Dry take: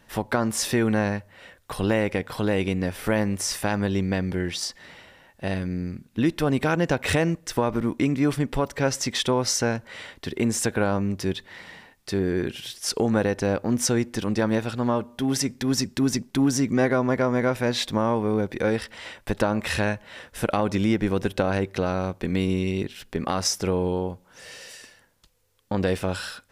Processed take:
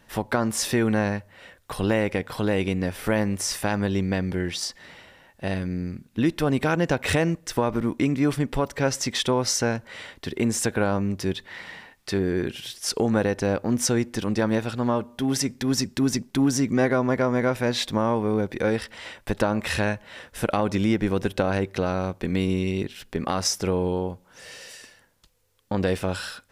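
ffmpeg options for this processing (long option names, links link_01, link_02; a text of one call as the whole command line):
ffmpeg -i in.wav -filter_complex "[0:a]asettb=1/sr,asplit=3[link_01][link_02][link_03];[link_01]atrim=end=11.454[link_04];[link_02]atrim=start=11.45:end=12.18,asetpts=PTS-STARTPTS,afade=type=in:duration=0.004:curve=qsin,afade=type=out:start_time=0.726:duration=0.004:curve=qsin,equalizer=frequency=1800:width_type=o:width=2.8:gain=4[link_05];[link_03]atrim=start=12.176[link_06];[link_04][link_05]acrossfade=duration=0.004:curve1=hsin:curve2=qsin[link_07];[link_07][link_06]acrossfade=duration=0.004:curve1=qsin:curve2=hsin" out.wav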